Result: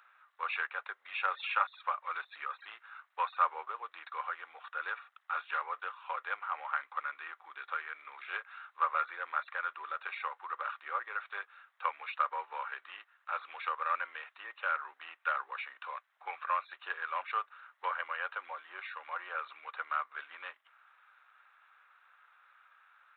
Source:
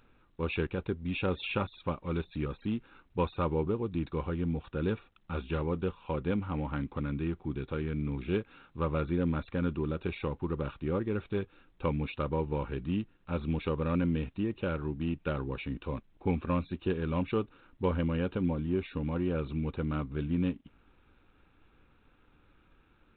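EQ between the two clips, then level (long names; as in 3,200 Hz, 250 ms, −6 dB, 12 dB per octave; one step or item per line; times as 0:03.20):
Butterworth high-pass 680 Hz 36 dB per octave
flat-topped bell 1,500 Hz +9.5 dB 1.1 octaves
dynamic equaliser 3,400 Hz, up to −3 dB, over −51 dBFS, Q 2.4
0.0 dB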